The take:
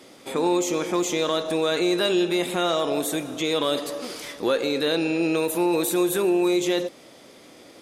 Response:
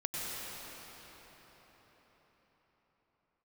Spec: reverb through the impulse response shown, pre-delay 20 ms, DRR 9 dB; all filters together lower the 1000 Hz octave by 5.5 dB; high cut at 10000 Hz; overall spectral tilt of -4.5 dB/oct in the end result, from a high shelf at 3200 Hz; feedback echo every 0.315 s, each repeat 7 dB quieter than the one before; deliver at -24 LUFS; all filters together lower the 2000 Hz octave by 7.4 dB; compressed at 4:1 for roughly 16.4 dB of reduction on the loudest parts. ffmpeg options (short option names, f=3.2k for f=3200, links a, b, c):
-filter_complex "[0:a]lowpass=10k,equalizer=f=1k:t=o:g=-5,equalizer=f=2k:t=o:g=-7,highshelf=f=3.2k:g=-4.5,acompressor=threshold=-40dB:ratio=4,aecho=1:1:315|630|945|1260|1575:0.447|0.201|0.0905|0.0407|0.0183,asplit=2[a][b];[1:a]atrim=start_sample=2205,adelay=20[c];[b][c]afir=irnorm=-1:irlink=0,volume=-14dB[d];[a][d]amix=inputs=2:normalize=0,volume=15dB"